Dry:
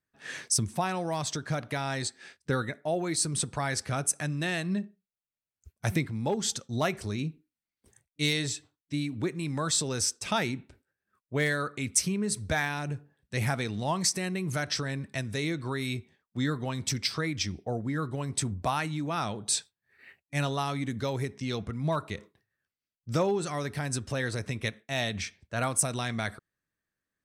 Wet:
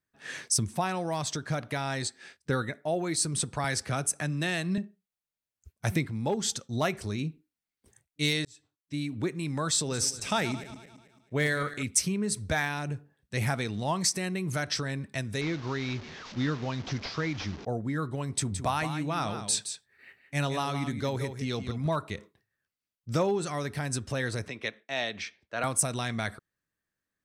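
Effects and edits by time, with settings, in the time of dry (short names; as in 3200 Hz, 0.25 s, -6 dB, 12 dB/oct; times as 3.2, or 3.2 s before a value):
3.64–4.78 three-band squash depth 40%
8.45–9.12 fade in
9.76–11.83 regenerating reverse delay 0.11 s, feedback 60%, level -13.5 dB
15.41–17.65 delta modulation 32 kbps, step -38 dBFS
18.32–21.87 echo 0.169 s -9 dB
24.48–25.64 three-band isolator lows -16 dB, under 260 Hz, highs -19 dB, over 5700 Hz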